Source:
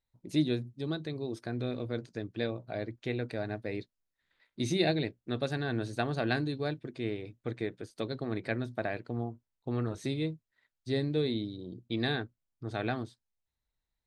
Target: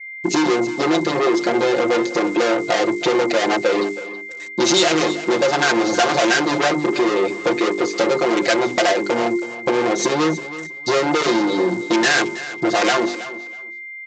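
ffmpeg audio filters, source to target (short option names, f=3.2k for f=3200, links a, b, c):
-filter_complex "[0:a]afwtdn=0.0141,bandreject=f=50:t=h:w=6,bandreject=f=100:t=h:w=6,bandreject=f=150:t=h:w=6,bandreject=f=200:t=h:w=6,bandreject=f=250:t=h:w=6,bandreject=f=300:t=h:w=6,bandreject=f=350:t=h:w=6,bandreject=f=400:t=h:w=6,bandreject=f=450:t=h:w=6,asplit=2[a][b];[b]highpass=f=720:p=1,volume=39dB,asoftclip=type=tanh:threshold=-13.5dB[c];[a][c]amix=inputs=2:normalize=0,lowpass=f=2.9k:p=1,volume=-6dB,highpass=300,aecho=1:1:5.7:0.93,acompressor=threshold=-26dB:ratio=2.5,aresample=16000,aeval=exprs='val(0)*gte(abs(val(0)),0.00266)':c=same,aresample=44100,aeval=exprs='val(0)+0.00891*sin(2*PI*2100*n/s)':c=same,aemphasis=mode=production:type=50fm,aecho=1:1:323|646:0.178|0.0373,adynamicequalizer=threshold=0.00794:dfrequency=3800:dqfactor=0.7:tfrequency=3800:tqfactor=0.7:attack=5:release=100:ratio=0.375:range=2.5:mode=boostabove:tftype=highshelf,volume=9dB"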